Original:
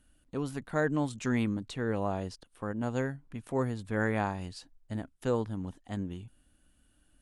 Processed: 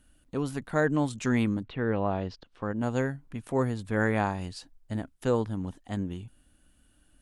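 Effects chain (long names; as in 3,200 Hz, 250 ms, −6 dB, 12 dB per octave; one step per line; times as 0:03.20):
0:01.62–0:02.73: low-pass filter 2,800 Hz → 6,400 Hz 24 dB per octave
level +3.5 dB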